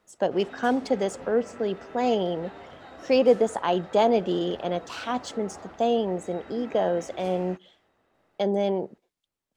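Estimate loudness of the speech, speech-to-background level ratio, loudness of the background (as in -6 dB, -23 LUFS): -26.0 LUFS, 18.5 dB, -44.5 LUFS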